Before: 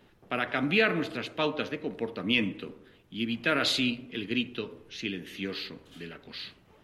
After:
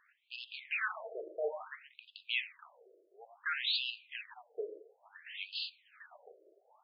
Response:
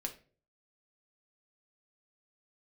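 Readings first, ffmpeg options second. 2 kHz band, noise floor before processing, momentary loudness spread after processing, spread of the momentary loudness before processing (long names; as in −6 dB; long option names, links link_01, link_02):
−8.0 dB, −61 dBFS, 21 LU, 17 LU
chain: -af "asoftclip=type=tanh:threshold=-25.5dB,afftfilt=real='re*between(b*sr/1024,470*pow(3700/470,0.5+0.5*sin(2*PI*0.58*pts/sr))/1.41,470*pow(3700/470,0.5+0.5*sin(2*PI*0.58*pts/sr))*1.41)':imag='im*between(b*sr/1024,470*pow(3700/470,0.5+0.5*sin(2*PI*0.58*pts/sr))/1.41,470*pow(3700/470,0.5+0.5*sin(2*PI*0.58*pts/sr))*1.41)':win_size=1024:overlap=0.75"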